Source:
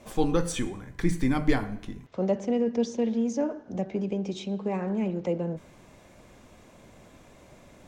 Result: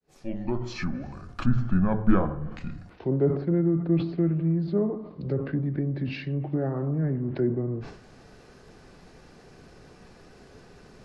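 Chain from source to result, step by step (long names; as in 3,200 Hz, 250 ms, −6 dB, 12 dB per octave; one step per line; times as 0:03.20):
fade in at the beginning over 0.80 s
parametric band 120 Hz −3 dB 1.4 octaves
change of speed 0.713×
treble cut that deepens with the level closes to 1,300 Hz, closed at −26.5 dBFS
level that may fall only so fast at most 83 dB per second
level +2.5 dB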